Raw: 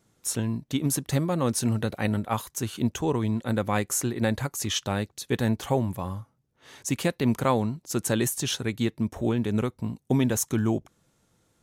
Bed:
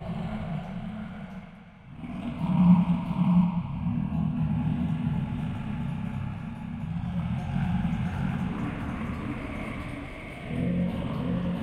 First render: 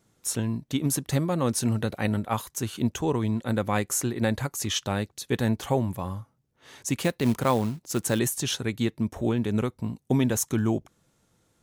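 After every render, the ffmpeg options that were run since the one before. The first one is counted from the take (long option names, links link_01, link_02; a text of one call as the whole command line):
ffmpeg -i in.wav -filter_complex "[0:a]asettb=1/sr,asplit=3[link_01][link_02][link_03];[link_01]atrim=end=7.004[link_04];[link_02]atrim=start=7:end=8.19,asetpts=PTS-STARTPTS,afade=type=in:duration=0.004:curve=qsin,afade=type=out:start_time=1.186:duration=0.004:curve=qsin,acrusher=bits=5:mode=log:mix=0:aa=0.000001[link_05];[link_03]atrim=start=8.186[link_06];[link_04][link_05]acrossfade=duration=0.004:curve1=hsin:curve2=qsin[link_07];[link_07][link_06]acrossfade=duration=0.004:curve1=qsin:curve2=hsin" out.wav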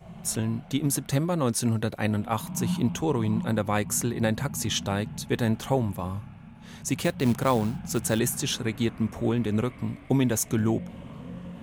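ffmpeg -i in.wav -i bed.wav -filter_complex "[1:a]volume=-10.5dB[link_01];[0:a][link_01]amix=inputs=2:normalize=0" out.wav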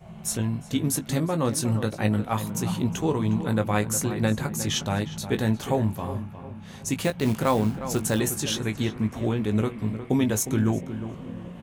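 ffmpeg -i in.wav -filter_complex "[0:a]asplit=2[link_01][link_02];[link_02]adelay=19,volume=-8dB[link_03];[link_01][link_03]amix=inputs=2:normalize=0,asplit=2[link_04][link_05];[link_05]adelay=359,lowpass=frequency=2100:poles=1,volume=-11dB,asplit=2[link_06][link_07];[link_07]adelay=359,lowpass=frequency=2100:poles=1,volume=0.39,asplit=2[link_08][link_09];[link_09]adelay=359,lowpass=frequency=2100:poles=1,volume=0.39,asplit=2[link_10][link_11];[link_11]adelay=359,lowpass=frequency=2100:poles=1,volume=0.39[link_12];[link_04][link_06][link_08][link_10][link_12]amix=inputs=5:normalize=0" out.wav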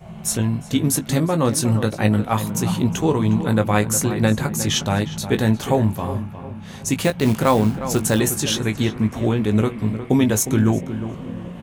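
ffmpeg -i in.wav -af "volume=6dB" out.wav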